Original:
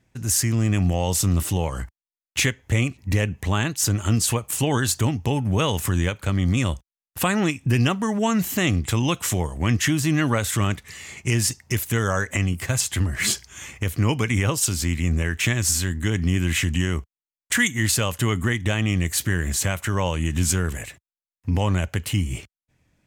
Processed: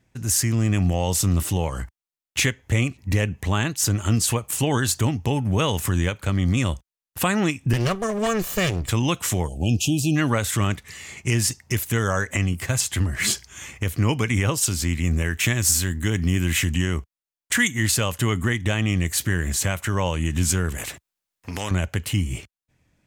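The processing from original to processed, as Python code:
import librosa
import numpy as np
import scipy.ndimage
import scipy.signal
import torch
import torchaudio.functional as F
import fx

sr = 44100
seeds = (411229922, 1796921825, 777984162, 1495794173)

y = fx.lower_of_two(x, sr, delay_ms=1.7, at=(7.73, 8.89))
y = fx.brickwall_bandstop(y, sr, low_hz=860.0, high_hz=2400.0, at=(9.47, 10.15), fade=0.02)
y = fx.high_shelf(y, sr, hz=12000.0, db=10.0, at=(15.04, 16.75))
y = fx.spectral_comp(y, sr, ratio=2.0, at=(20.78, 21.71))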